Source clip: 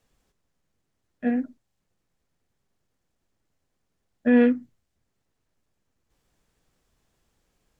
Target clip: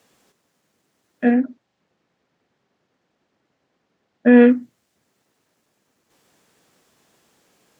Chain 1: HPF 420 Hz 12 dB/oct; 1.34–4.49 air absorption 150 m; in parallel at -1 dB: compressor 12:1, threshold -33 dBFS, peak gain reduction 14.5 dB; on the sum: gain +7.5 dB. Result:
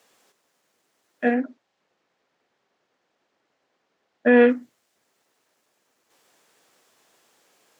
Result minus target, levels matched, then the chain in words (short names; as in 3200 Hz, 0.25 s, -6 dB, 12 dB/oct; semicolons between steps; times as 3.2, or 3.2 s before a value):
500 Hz band +3.0 dB
HPF 200 Hz 12 dB/oct; 1.34–4.49 air absorption 150 m; in parallel at -1 dB: compressor 12:1, threshold -33 dBFS, peak gain reduction 18.5 dB; on the sum: gain +7.5 dB